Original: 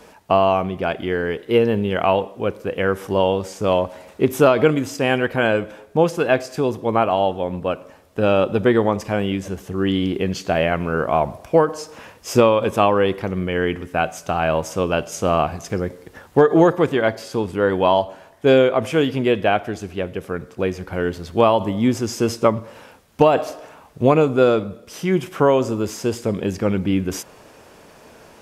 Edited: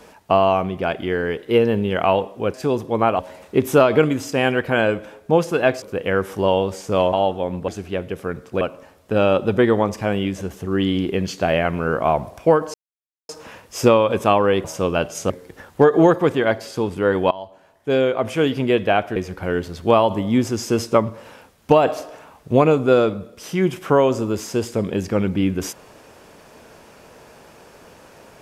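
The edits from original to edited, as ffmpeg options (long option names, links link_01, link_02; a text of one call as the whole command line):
ffmpeg -i in.wav -filter_complex "[0:a]asplit=12[link_01][link_02][link_03][link_04][link_05][link_06][link_07][link_08][link_09][link_10][link_11][link_12];[link_01]atrim=end=2.542[link_13];[link_02]atrim=start=6.478:end=7.132[link_14];[link_03]atrim=start=3.848:end=6.482[link_15];[link_04]atrim=start=2.538:end=3.852[link_16];[link_05]atrim=start=7.128:end=7.682[link_17];[link_06]atrim=start=19.728:end=20.662[link_18];[link_07]atrim=start=7.678:end=11.81,asetpts=PTS-STARTPTS,afade=type=out:start_time=4.128:duration=0.004:curve=hsin,apad=pad_dur=0.55[link_19];[link_08]atrim=start=11.81:end=13.162,asetpts=PTS-STARTPTS,afade=type=in:duration=0.004:curve=hsin[link_20];[link_09]atrim=start=14.608:end=15.272[link_21];[link_10]atrim=start=15.868:end=17.88,asetpts=PTS-STARTPTS,afade=type=out:start_time=2.008:duration=0.004:curve=hsin:silence=0.0891251[link_22];[link_11]atrim=start=17.88:end=19.732,asetpts=PTS-STARTPTS,afade=type=in:duration=1.23:silence=0.0891251[link_23];[link_12]atrim=start=20.658[link_24];[link_13][link_14]acrossfade=duration=0.004:curve1=hsin:curve2=hsin[link_25];[link_25][link_15]acrossfade=duration=0.004:curve1=hsin:curve2=hsin[link_26];[link_26][link_16]acrossfade=duration=0.004:curve1=hsin:curve2=hsin[link_27];[link_27][link_17]acrossfade=duration=0.004:curve1=hsin:curve2=hsin[link_28];[link_28][link_18]acrossfade=duration=0.004:curve1=hsin:curve2=hsin[link_29];[link_19][link_20]concat=n=2:v=0:a=1[link_30];[link_29][link_30]acrossfade=duration=0.004:curve1=hsin:curve2=hsin[link_31];[link_31][link_21]acrossfade=duration=0.004:curve1=hsin:curve2=hsin[link_32];[link_22][link_23]concat=n=2:v=0:a=1[link_33];[link_32][link_33]acrossfade=duration=0.004:curve1=hsin:curve2=hsin[link_34];[link_34][link_24]acrossfade=duration=0.004:curve1=hsin:curve2=hsin" out.wav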